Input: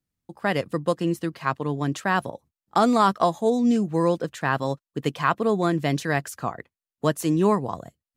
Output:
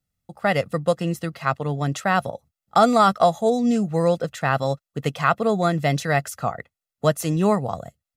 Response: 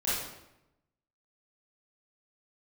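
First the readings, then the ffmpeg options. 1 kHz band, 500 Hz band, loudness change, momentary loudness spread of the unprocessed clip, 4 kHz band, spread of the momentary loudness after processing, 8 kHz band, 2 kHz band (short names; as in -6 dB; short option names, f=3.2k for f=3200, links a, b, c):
+3.0 dB, +3.0 dB, +2.0 dB, 9 LU, +2.5 dB, 11 LU, +3.5 dB, +2.0 dB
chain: -af "aecho=1:1:1.5:0.57,volume=2dB"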